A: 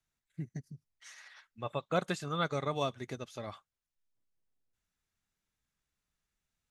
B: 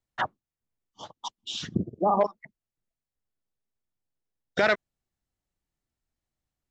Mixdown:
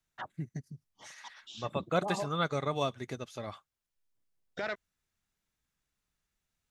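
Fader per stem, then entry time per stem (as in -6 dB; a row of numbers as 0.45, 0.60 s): +1.5, -13.5 dB; 0.00, 0.00 s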